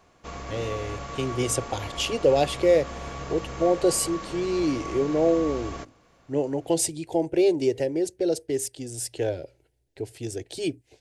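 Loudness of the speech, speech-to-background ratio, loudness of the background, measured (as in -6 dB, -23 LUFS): -26.0 LUFS, 10.5 dB, -36.5 LUFS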